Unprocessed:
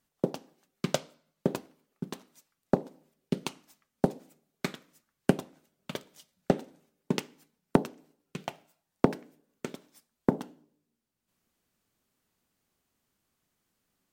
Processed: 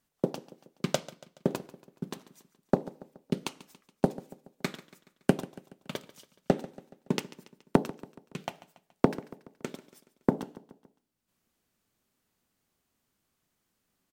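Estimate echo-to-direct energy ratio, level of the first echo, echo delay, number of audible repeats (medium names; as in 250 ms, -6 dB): -16.5 dB, -18.0 dB, 141 ms, 3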